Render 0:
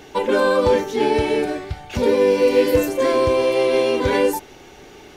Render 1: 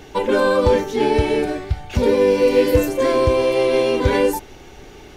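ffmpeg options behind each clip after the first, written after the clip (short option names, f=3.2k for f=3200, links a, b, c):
-af "lowshelf=f=99:g=12"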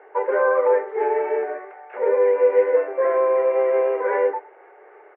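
-filter_complex "[0:a]asplit=2[a][b];[b]acrusher=samples=12:mix=1:aa=0.000001:lfo=1:lforange=12:lforate=3.6,volume=-9dB[c];[a][c]amix=inputs=2:normalize=0,asuperpass=centerf=930:order=12:qfactor=0.56,aecho=1:1:106:0.0841,volume=-3.5dB"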